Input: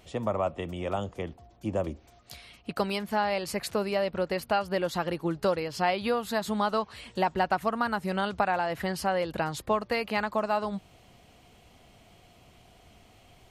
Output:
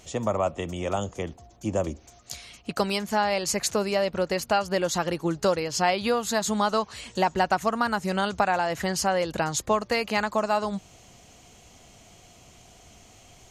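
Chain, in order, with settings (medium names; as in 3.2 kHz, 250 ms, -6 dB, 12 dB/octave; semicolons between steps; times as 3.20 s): peaking EQ 6.6 kHz +14.5 dB 0.59 oct; trim +3 dB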